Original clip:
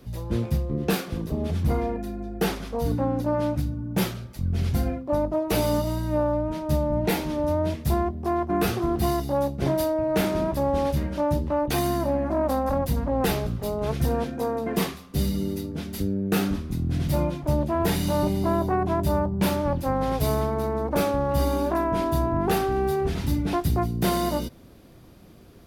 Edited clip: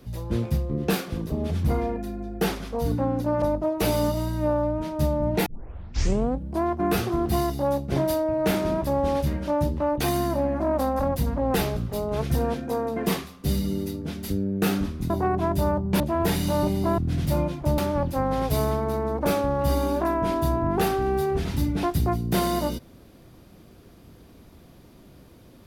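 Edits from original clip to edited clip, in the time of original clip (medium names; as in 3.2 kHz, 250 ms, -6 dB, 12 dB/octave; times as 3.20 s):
3.42–5.12 s: delete
7.16 s: tape start 1.18 s
16.80–17.60 s: swap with 18.58–19.48 s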